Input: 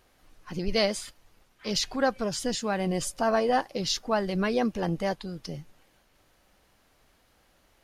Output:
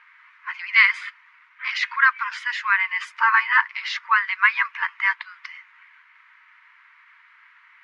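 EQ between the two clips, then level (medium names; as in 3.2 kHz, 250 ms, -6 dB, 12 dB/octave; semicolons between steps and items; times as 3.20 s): brick-wall FIR high-pass 890 Hz; resonant low-pass 2.1 kHz, resonance Q 4.8; peaking EQ 1.3 kHz +5 dB 1.2 oct; +6.5 dB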